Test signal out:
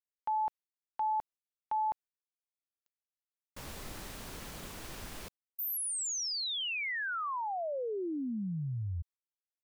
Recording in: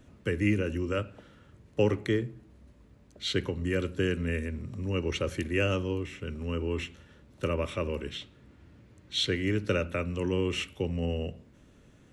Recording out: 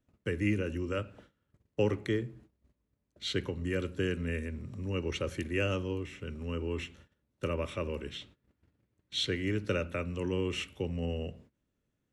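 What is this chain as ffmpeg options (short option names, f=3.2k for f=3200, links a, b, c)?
-af "agate=range=-20dB:threshold=-51dB:ratio=16:detection=peak,volume=-3.5dB"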